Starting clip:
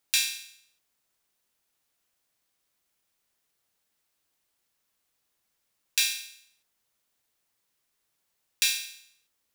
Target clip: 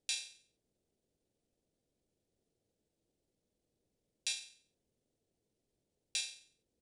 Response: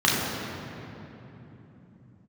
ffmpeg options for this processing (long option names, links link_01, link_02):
-af "firequalizer=gain_entry='entry(460,0);entry(1100,-27);entry(3400,-20)':delay=0.05:min_phase=1,atempo=1.4,aresample=22050,aresample=44100,volume=8.5dB"